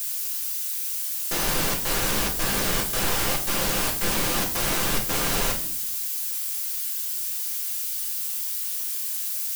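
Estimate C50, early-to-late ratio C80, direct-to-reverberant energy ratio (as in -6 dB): 9.5 dB, 13.5 dB, -0.5 dB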